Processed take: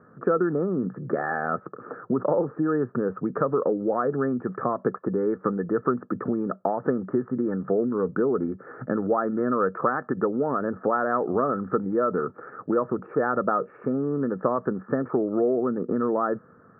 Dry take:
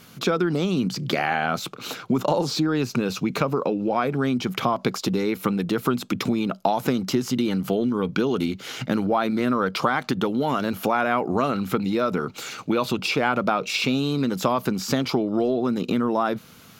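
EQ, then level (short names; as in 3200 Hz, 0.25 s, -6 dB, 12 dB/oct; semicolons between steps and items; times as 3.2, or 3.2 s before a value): HPF 56 Hz; rippled Chebyshev low-pass 1800 Hz, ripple 9 dB; +2.5 dB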